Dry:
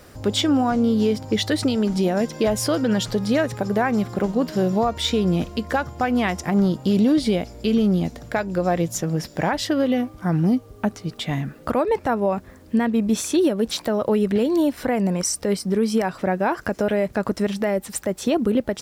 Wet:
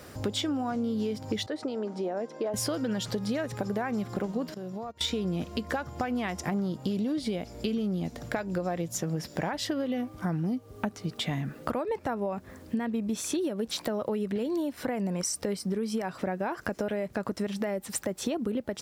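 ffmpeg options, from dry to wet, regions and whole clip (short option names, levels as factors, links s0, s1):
-filter_complex "[0:a]asettb=1/sr,asplit=3[s0][s1][s2];[s0]atrim=end=1.464[s3];[s1]atrim=start=1.46:end=2.54,asetpts=PTS-STARTPTS,afade=t=in:d=0.004:c=qsin,afade=t=out:st=1.076:d=0.004:c=qsin,highpass=450,lowpass=4300,equalizer=f=3100:t=o:w=2.6:g=-14.5[s4];[s2]atrim=start=2.536[s5];[s3][s4]acrossfade=d=0.004:c1=hsin:c2=qsin[s6];[s6][s5]acrossfade=d=0.004:c1=qsin:c2=hsin,asettb=1/sr,asplit=3[s7][s8][s9];[s7]atrim=end=4.544[s10];[s8]atrim=start=4.54:end=5.01,asetpts=PTS-STARTPTS,afade=t=in:d=0.004:c=qsin,afade=t=out:st=0.466:d=0.004:c=qsin,agate=range=0.1:threshold=0.0708:ratio=16:release=100:detection=peak,acompressor=threshold=0.02:ratio=8:attack=3.2:release=140:knee=1:detection=peak[s11];[s9]atrim=start=5.006[s12];[s10][s11]acrossfade=d=0.004:c1=hsin:c2=qsin[s13];[s13][s12]acrossfade=d=0.004:c1=qsin:c2=hsin,highpass=68,acompressor=threshold=0.0398:ratio=6"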